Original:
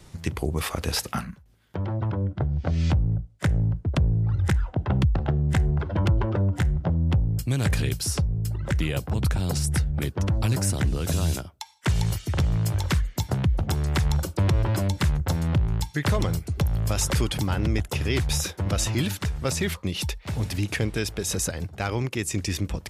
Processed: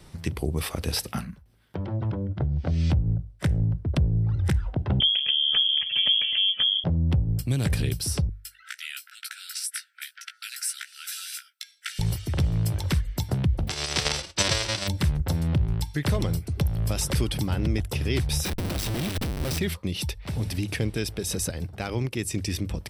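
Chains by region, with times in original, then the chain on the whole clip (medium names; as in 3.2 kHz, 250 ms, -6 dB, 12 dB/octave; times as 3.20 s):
5.00–6.84 s: comb of notches 370 Hz + frequency inversion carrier 3.3 kHz + three bands compressed up and down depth 40%
8.29–11.99 s: brick-wall FIR high-pass 1.3 kHz + doubling 16 ms -5.5 dB
13.67–14.87 s: formants flattened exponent 0.1 + low-pass 6.4 kHz 24 dB/octave + transient shaper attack +7 dB, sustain -6 dB
18.45–19.59 s: low-pass 5.9 kHz + Schmitt trigger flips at -40.5 dBFS
whole clip: band-stop 6.8 kHz, Q 5.3; dynamic bell 1.2 kHz, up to -6 dB, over -43 dBFS, Q 0.72; hum notches 50/100 Hz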